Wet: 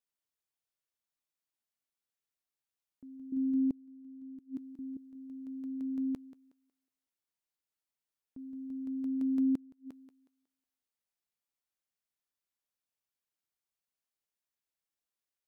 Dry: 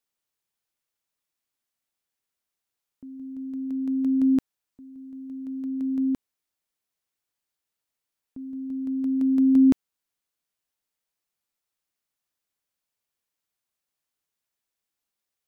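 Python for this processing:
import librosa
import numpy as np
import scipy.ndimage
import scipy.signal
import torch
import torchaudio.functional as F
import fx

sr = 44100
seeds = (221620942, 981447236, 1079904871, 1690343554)

y = fx.low_shelf_res(x, sr, hz=380.0, db=7.0, q=3.0, at=(3.32, 4.97))
y = fx.echo_thinned(y, sr, ms=183, feedback_pct=32, hz=260.0, wet_db=-15.5)
y = fx.gate_flip(y, sr, shuts_db=-15.0, range_db=-30)
y = F.gain(torch.from_numpy(y), -8.5).numpy()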